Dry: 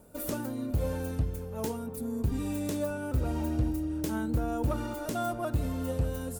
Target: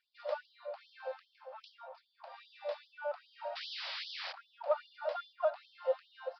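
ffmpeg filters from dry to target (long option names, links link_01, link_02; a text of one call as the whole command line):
ffmpeg -i in.wav -filter_complex "[0:a]tiltshelf=frequency=870:gain=10,asplit=3[link_01][link_02][link_03];[link_01]afade=type=out:start_time=3.55:duration=0.02[link_04];[link_02]aeval=exprs='(mod(70.8*val(0)+1,2)-1)/70.8':channel_layout=same,afade=type=in:start_time=3.55:duration=0.02,afade=type=out:start_time=4.31:duration=0.02[link_05];[link_03]afade=type=in:start_time=4.31:duration=0.02[link_06];[link_04][link_05][link_06]amix=inputs=3:normalize=0,aresample=11025,aresample=44100,afftfilt=real='re*gte(b*sr/1024,490*pow(3100/490,0.5+0.5*sin(2*PI*2.5*pts/sr)))':imag='im*gte(b*sr/1024,490*pow(3100/490,0.5+0.5*sin(2*PI*2.5*pts/sr)))':win_size=1024:overlap=0.75,volume=3dB" out.wav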